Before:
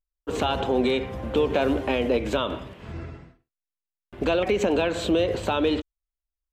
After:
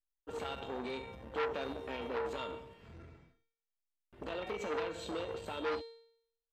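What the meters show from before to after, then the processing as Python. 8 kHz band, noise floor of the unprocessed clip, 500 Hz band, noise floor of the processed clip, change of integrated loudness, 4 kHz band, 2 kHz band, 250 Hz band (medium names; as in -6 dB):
-14.5 dB, under -85 dBFS, -15.0 dB, under -85 dBFS, -15.0 dB, -15.0 dB, -12.0 dB, -19.5 dB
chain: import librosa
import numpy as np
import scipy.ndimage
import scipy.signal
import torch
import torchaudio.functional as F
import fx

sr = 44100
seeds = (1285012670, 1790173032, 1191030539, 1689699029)

y = fx.comb_fb(x, sr, f0_hz=460.0, decay_s=0.68, harmonics='all', damping=0.0, mix_pct=90)
y = fx.transformer_sat(y, sr, knee_hz=1500.0)
y = y * librosa.db_to_amplitude(3.5)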